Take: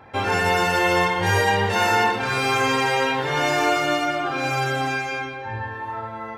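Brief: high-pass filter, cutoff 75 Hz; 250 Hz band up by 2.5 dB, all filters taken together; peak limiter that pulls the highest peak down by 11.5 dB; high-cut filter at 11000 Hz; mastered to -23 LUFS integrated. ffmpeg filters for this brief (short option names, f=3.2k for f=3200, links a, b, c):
-af "highpass=75,lowpass=11k,equalizer=f=250:t=o:g=3.5,volume=3dB,alimiter=limit=-14.5dB:level=0:latency=1"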